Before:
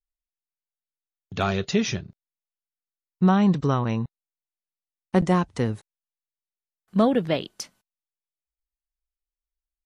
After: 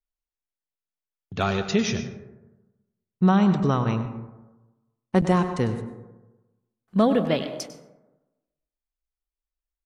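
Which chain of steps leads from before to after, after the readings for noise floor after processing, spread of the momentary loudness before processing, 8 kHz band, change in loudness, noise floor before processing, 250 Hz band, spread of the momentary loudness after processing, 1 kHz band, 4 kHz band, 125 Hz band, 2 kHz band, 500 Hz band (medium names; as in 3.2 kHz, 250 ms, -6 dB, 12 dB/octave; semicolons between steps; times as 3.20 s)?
under -85 dBFS, 17 LU, 0.0 dB, 0.0 dB, under -85 dBFS, +0.5 dB, 17 LU, +0.5 dB, 0.0 dB, +0.5 dB, +0.5 dB, +0.5 dB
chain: delay 100 ms -14 dB; plate-style reverb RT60 1.1 s, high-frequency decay 0.35×, pre-delay 105 ms, DRR 10 dB; tape noise reduction on one side only decoder only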